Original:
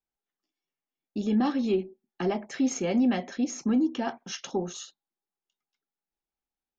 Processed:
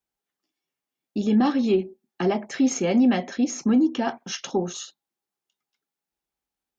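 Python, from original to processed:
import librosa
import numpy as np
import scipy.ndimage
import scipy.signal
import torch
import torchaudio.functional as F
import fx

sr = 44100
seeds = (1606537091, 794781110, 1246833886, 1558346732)

y = scipy.signal.sosfilt(scipy.signal.butter(2, 43.0, 'highpass', fs=sr, output='sos'), x)
y = y * 10.0 ** (5.0 / 20.0)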